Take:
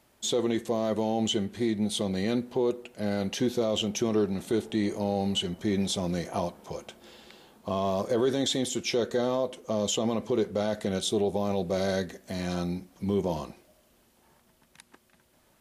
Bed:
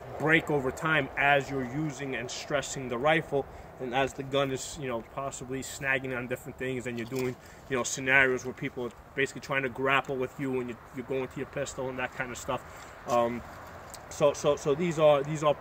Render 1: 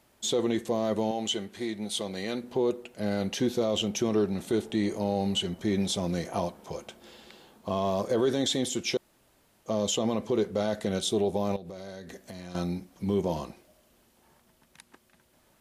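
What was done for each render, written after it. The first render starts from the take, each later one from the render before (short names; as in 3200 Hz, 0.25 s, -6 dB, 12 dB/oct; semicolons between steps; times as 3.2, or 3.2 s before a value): 1.11–2.44 low shelf 290 Hz -12 dB; 8.97–9.66 room tone; 11.56–12.55 compressor 16:1, threshold -37 dBFS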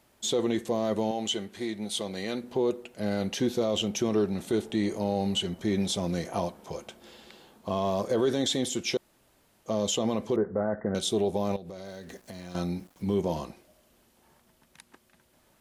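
10.36–10.95 steep low-pass 1900 Hz 96 dB/oct; 11.85–13.18 sample gate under -55 dBFS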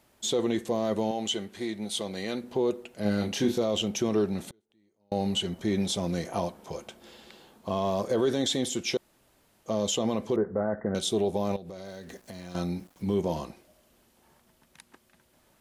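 3.02–3.58 doubler 29 ms -4 dB; 4.49–5.12 flipped gate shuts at -32 dBFS, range -40 dB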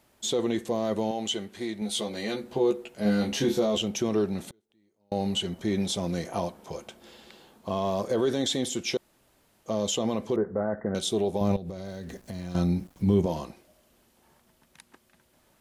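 1.8–3.78 doubler 14 ms -3 dB; 11.41–13.26 low shelf 210 Hz +12 dB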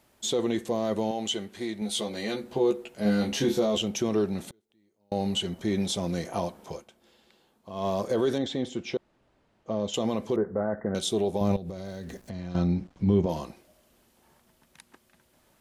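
6.72–7.86 dip -11 dB, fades 0.13 s; 8.38–9.94 tape spacing loss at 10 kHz 22 dB; 12.29–13.29 air absorption 110 m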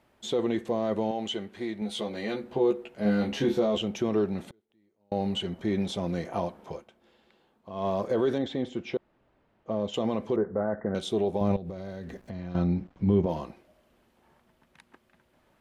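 tone controls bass -1 dB, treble -13 dB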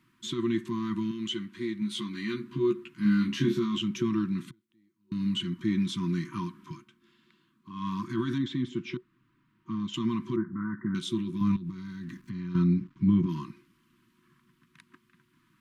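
FFT band-reject 370–940 Hz; resonant low shelf 100 Hz -7.5 dB, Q 3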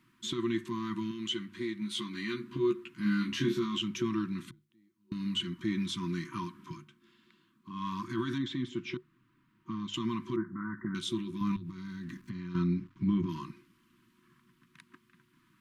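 notches 50/100/150 Hz; dynamic EQ 180 Hz, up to -6 dB, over -39 dBFS, Q 0.81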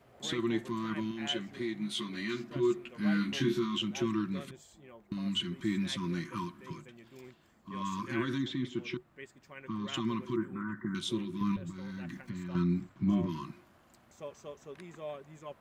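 add bed -20 dB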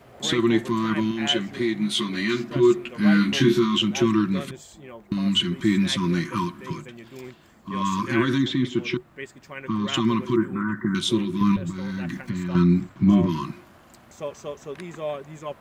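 gain +11.5 dB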